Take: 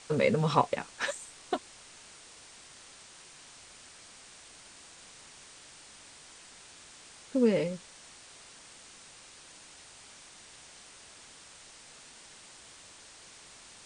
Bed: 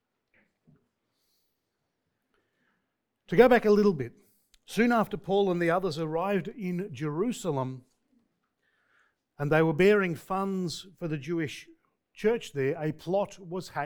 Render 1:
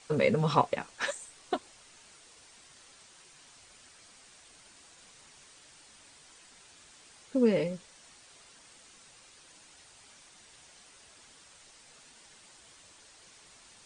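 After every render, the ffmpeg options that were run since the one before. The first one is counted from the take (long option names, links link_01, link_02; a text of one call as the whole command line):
ffmpeg -i in.wav -af "afftdn=noise_reduction=6:noise_floor=-53" out.wav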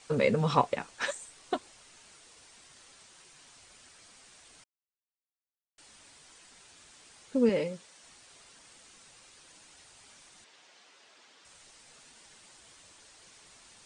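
ffmpeg -i in.wav -filter_complex "[0:a]asettb=1/sr,asplit=3[link_01][link_02][link_03];[link_01]atrim=end=7.494[link_04];[link_02]atrim=start=7.49:end=8.04,asetpts=PTS-STARTPTS,afade=type=in:duration=0.004:curve=qsin,afade=type=out:start_time=0.546:duration=0.004:curve=qsin,highpass=frequency=210:poles=1[link_05];[link_03]atrim=start=8.036[link_06];[link_04][link_05]acrossfade=duration=0.004:curve1=hsin:curve2=qsin[link_07];[link_07][link_06]acrossfade=duration=0.004:curve1=qsin:curve2=hsin,asettb=1/sr,asplit=3[link_08][link_09][link_10];[link_08]atrim=end=10.444[link_11];[link_09]atrim=start=10.44:end=11.45,asetpts=PTS-STARTPTS,afade=type=in:duration=0.004:curve=qsin,afade=type=out:start_time=1.006:duration=0.004:curve=qsin,highpass=290,lowpass=5000[link_12];[link_10]atrim=start=11.446[link_13];[link_11][link_12]acrossfade=duration=0.004:curve1=hsin:curve2=qsin[link_14];[link_14][link_13]acrossfade=duration=0.004:curve1=qsin:curve2=hsin,asplit=3[link_15][link_16][link_17];[link_15]atrim=end=4.64,asetpts=PTS-STARTPTS,afade=type=out:start_time=4.636:duration=0.004:curve=hsin[link_18];[link_16]atrim=start=4.64:end=5.78,asetpts=PTS-STARTPTS,volume=0[link_19];[link_17]atrim=start=5.78,asetpts=PTS-STARTPTS,afade=type=in:duration=0.004:curve=hsin[link_20];[link_18][link_19][link_20]concat=n=3:v=0:a=1" out.wav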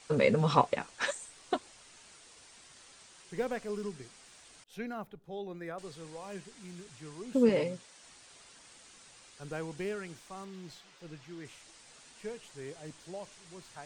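ffmpeg -i in.wav -i bed.wav -filter_complex "[1:a]volume=-15.5dB[link_01];[0:a][link_01]amix=inputs=2:normalize=0" out.wav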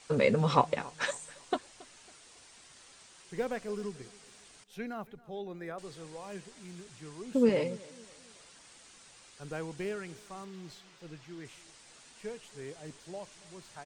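ffmpeg -i in.wav -af "aecho=1:1:276|552|828:0.0794|0.0302|0.0115" out.wav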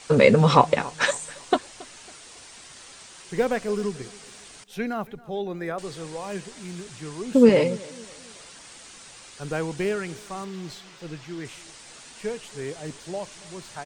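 ffmpeg -i in.wav -af "volume=10.5dB,alimiter=limit=-1dB:level=0:latency=1" out.wav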